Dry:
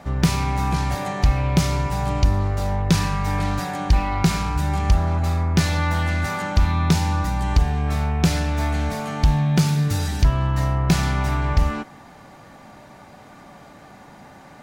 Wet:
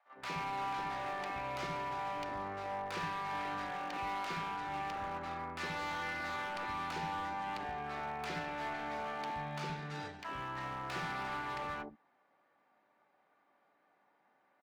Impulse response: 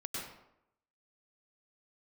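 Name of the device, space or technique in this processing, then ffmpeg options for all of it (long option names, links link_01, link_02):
walkie-talkie: -filter_complex "[0:a]highpass=400,lowpass=2400,asoftclip=type=hard:threshold=-27dB,agate=range=-17dB:threshold=-34dB:ratio=16:detection=peak,acrossover=split=200|690[link_01][link_02][link_03];[link_02]adelay=60[link_04];[link_01]adelay=120[link_05];[link_05][link_04][link_03]amix=inputs=3:normalize=0,volume=-7dB"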